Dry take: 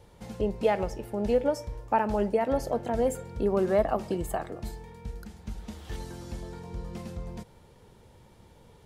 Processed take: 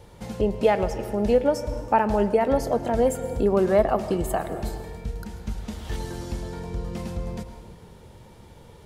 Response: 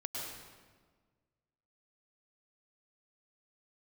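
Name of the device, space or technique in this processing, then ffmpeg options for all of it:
ducked reverb: -filter_complex "[0:a]asplit=3[a][b][c];[1:a]atrim=start_sample=2205[d];[b][d]afir=irnorm=-1:irlink=0[e];[c]apad=whole_len=390558[f];[e][f]sidechaincompress=threshold=-31dB:ratio=3:attack=5.8:release=406,volume=-6.5dB[g];[a][g]amix=inputs=2:normalize=0,volume=4dB"

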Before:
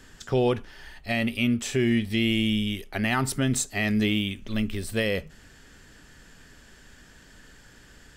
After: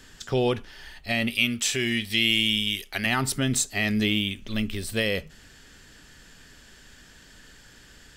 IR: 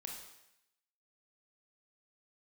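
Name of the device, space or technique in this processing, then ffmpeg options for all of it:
presence and air boost: -filter_complex "[0:a]equalizer=f=3.8k:t=o:w=1.6:g=5,highshelf=f=9.3k:g=5,asettb=1/sr,asplit=3[a][b][c];[a]atrim=end=1.304[d];[b]atrim=start=1.3:end=3.06,asetpts=PTS-STARTPTS,afade=t=in:d=0.004:c=qsin,afade=t=out:st=1.756:d=0.004:c=qsin,tiltshelf=f=1.1k:g=-5.5[e];[c]atrim=start=3.056[f];[d][e]acrossfade=d=0.004:c1=hsin:c2=qsin[g];[g][f]acrossfade=d=0.004:c1=qsin:c2=hsin,volume=-1dB"

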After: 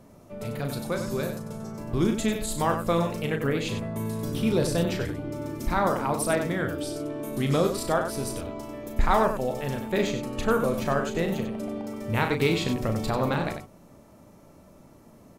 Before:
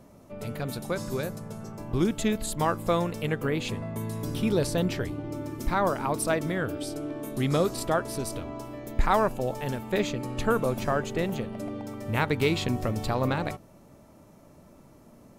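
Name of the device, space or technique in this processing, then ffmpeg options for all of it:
slapback doubling: -filter_complex "[0:a]asplit=3[a][b][c];[b]adelay=36,volume=-7dB[d];[c]adelay=95,volume=-8dB[e];[a][d][e]amix=inputs=3:normalize=0"

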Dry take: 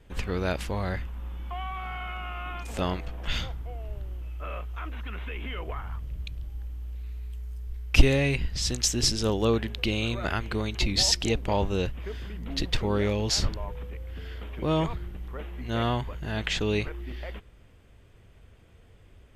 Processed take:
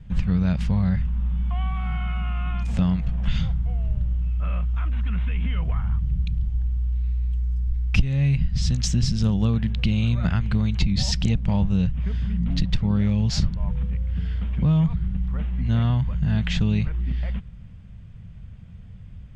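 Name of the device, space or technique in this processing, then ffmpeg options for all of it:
jukebox: -af "lowpass=6.4k,lowshelf=f=250:t=q:w=3:g=12,acompressor=threshold=-17dB:ratio=5"

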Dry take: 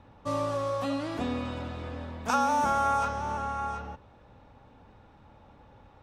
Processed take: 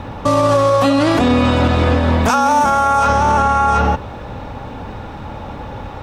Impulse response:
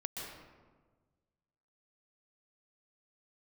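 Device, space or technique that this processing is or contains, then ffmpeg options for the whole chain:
loud club master: -af "acompressor=threshold=-29dB:ratio=2,asoftclip=type=hard:threshold=-20dB,alimiter=level_in=30.5dB:limit=-1dB:release=50:level=0:latency=1,volume=-4.5dB"

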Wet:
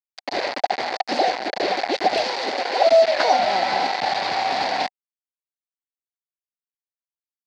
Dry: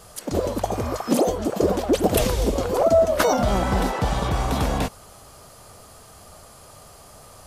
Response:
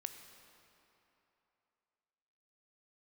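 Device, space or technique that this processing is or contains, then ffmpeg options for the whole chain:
hand-held game console: -filter_complex "[0:a]acrusher=bits=3:mix=0:aa=0.000001,highpass=460,equalizer=f=470:t=q:w=4:g=-5,equalizer=f=760:t=q:w=4:g=10,equalizer=f=1.2k:t=q:w=4:g=-8,equalizer=f=2k:t=q:w=4:g=5,equalizer=f=3.1k:t=q:w=4:g=-4,equalizer=f=4.5k:t=q:w=4:g=9,lowpass=f=4.6k:w=0.5412,lowpass=f=4.6k:w=1.3066,asettb=1/sr,asplit=3[a][b][c];[a]atrim=end=2.244[d];[b]atrim=start=2.24:end=2.92,asetpts=PTS-STARTPTS,afade=t=in:d=0.004:c=qsin,afade=t=out:st=0.676:d=0.004:c=qsin,highpass=210[e];[c]atrim=start=2.916[f];[d][e]acrossfade=d=0.004:c1=hsin:c2=qsin[g];[g][f]acrossfade=d=0.004:c1=qsin:c2=hsin"

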